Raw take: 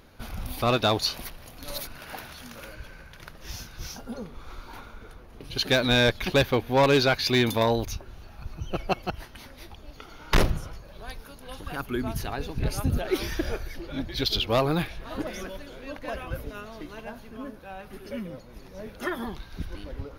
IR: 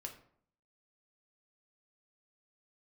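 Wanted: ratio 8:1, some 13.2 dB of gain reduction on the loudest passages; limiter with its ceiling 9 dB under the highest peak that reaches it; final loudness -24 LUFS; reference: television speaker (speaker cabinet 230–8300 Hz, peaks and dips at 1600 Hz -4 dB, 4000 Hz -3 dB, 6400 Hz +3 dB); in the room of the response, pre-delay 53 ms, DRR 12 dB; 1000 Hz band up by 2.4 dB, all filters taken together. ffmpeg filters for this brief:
-filter_complex "[0:a]equalizer=f=1k:t=o:g=3.5,acompressor=threshold=-30dB:ratio=8,alimiter=level_in=2dB:limit=-24dB:level=0:latency=1,volume=-2dB,asplit=2[a][b];[1:a]atrim=start_sample=2205,adelay=53[c];[b][c]afir=irnorm=-1:irlink=0,volume=-8.5dB[d];[a][d]amix=inputs=2:normalize=0,highpass=f=230:w=0.5412,highpass=f=230:w=1.3066,equalizer=f=1.6k:t=q:w=4:g=-4,equalizer=f=4k:t=q:w=4:g=-3,equalizer=f=6.4k:t=q:w=4:g=3,lowpass=f=8.3k:w=0.5412,lowpass=f=8.3k:w=1.3066,volume=15.5dB"

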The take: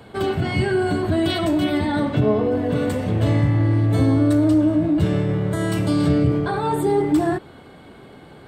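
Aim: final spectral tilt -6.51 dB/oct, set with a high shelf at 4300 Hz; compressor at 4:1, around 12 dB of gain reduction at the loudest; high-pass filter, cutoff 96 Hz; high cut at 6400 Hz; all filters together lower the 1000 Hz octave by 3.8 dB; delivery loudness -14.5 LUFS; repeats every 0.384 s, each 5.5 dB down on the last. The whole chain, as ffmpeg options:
-af "highpass=96,lowpass=6.4k,equalizer=f=1k:t=o:g=-5.5,highshelf=f=4.3k:g=4,acompressor=threshold=-29dB:ratio=4,aecho=1:1:384|768|1152|1536|1920|2304|2688:0.531|0.281|0.149|0.079|0.0419|0.0222|0.0118,volume=15dB"

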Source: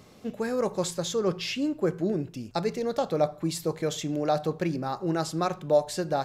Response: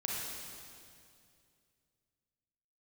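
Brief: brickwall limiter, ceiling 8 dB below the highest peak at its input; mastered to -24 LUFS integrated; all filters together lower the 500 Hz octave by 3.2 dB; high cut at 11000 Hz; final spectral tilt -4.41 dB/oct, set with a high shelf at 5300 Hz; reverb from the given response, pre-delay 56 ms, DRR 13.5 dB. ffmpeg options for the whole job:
-filter_complex "[0:a]lowpass=11k,equalizer=f=500:t=o:g=-4,highshelf=f=5.3k:g=6.5,alimiter=limit=-21.5dB:level=0:latency=1,asplit=2[a][b];[1:a]atrim=start_sample=2205,adelay=56[c];[b][c]afir=irnorm=-1:irlink=0,volume=-17.5dB[d];[a][d]amix=inputs=2:normalize=0,volume=7.5dB"

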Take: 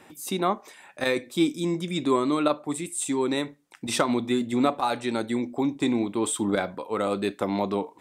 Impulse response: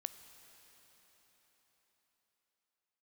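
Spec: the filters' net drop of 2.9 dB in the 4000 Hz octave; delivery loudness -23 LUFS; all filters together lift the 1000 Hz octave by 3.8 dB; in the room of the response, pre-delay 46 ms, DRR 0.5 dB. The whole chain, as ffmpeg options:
-filter_complex "[0:a]equalizer=f=1k:t=o:g=5,equalizer=f=4k:t=o:g=-3.5,asplit=2[a][b];[1:a]atrim=start_sample=2205,adelay=46[c];[b][c]afir=irnorm=-1:irlink=0,volume=2dB[d];[a][d]amix=inputs=2:normalize=0"

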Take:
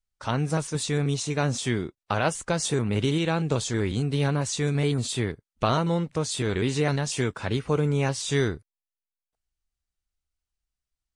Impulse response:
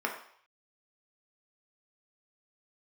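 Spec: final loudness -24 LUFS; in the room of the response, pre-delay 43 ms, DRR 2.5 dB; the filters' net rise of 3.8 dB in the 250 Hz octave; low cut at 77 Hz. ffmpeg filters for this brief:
-filter_complex "[0:a]highpass=77,equalizer=f=250:t=o:g=5.5,asplit=2[a][b];[1:a]atrim=start_sample=2205,adelay=43[c];[b][c]afir=irnorm=-1:irlink=0,volume=-10.5dB[d];[a][d]amix=inputs=2:normalize=0,volume=-0.5dB"

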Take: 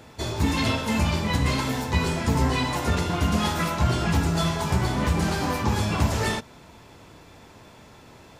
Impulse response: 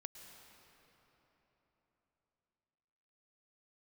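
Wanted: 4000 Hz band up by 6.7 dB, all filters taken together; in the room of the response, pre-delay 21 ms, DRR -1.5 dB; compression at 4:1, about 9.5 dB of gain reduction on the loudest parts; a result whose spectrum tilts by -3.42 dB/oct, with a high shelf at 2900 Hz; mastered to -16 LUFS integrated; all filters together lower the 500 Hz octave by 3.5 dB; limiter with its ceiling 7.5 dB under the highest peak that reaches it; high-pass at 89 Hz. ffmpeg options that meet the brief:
-filter_complex "[0:a]highpass=89,equalizer=f=500:t=o:g=-5,highshelf=f=2.9k:g=5.5,equalizer=f=4k:t=o:g=4,acompressor=threshold=-31dB:ratio=4,alimiter=level_in=2dB:limit=-24dB:level=0:latency=1,volume=-2dB,asplit=2[a][b];[1:a]atrim=start_sample=2205,adelay=21[c];[b][c]afir=irnorm=-1:irlink=0,volume=6dB[d];[a][d]amix=inputs=2:normalize=0,volume=15.5dB"

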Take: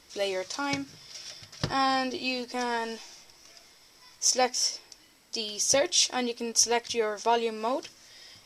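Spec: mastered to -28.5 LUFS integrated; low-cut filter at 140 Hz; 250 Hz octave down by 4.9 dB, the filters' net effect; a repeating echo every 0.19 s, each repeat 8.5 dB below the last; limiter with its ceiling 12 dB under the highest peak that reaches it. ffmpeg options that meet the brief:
-af "highpass=140,equalizer=f=250:t=o:g=-5,alimiter=limit=-20dB:level=0:latency=1,aecho=1:1:190|380|570|760:0.376|0.143|0.0543|0.0206,volume=2.5dB"

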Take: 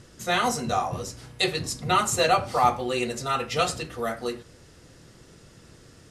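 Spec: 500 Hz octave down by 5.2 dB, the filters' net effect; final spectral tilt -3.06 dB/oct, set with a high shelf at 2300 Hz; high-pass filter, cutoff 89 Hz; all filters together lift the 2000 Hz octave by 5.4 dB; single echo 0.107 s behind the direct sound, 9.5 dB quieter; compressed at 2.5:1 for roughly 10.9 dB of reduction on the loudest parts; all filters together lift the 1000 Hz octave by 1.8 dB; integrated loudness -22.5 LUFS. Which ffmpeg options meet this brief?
-af "highpass=89,equalizer=f=500:t=o:g=-8.5,equalizer=f=1k:t=o:g=3.5,equalizer=f=2k:t=o:g=8.5,highshelf=f=2.3k:g=-3,acompressor=threshold=-31dB:ratio=2.5,aecho=1:1:107:0.335,volume=9dB"

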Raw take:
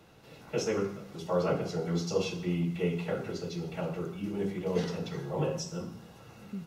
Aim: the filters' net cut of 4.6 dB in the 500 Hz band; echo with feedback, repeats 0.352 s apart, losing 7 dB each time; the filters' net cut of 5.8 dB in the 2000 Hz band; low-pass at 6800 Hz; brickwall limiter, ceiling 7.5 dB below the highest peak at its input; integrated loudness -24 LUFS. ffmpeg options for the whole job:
-af "lowpass=6.8k,equalizer=f=500:t=o:g=-5,equalizer=f=2k:t=o:g=-8,alimiter=level_in=2dB:limit=-24dB:level=0:latency=1,volume=-2dB,aecho=1:1:352|704|1056|1408|1760:0.447|0.201|0.0905|0.0407|0.0183,volume=12dB"

